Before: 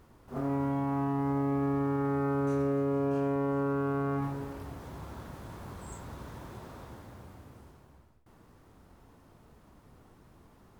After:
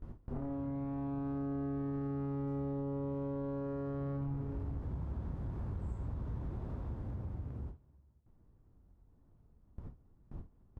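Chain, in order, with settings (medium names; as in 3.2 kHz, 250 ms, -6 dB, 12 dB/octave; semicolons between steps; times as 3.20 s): self-modulated delay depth 0.12 ms; one-sided clip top -43 dBFS, bottom -24.5 dBFS; peak limiter -29.5 dBFS, peak gain reduction 4 dB; tilt EQ -4.5 dB/octave; delay 86 ms -9 dB; compression 3:1, threshold -44 dBFS, peak gain reduction 15.5 dB; gate with hold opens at -37 dBFS; trim +3.5 dB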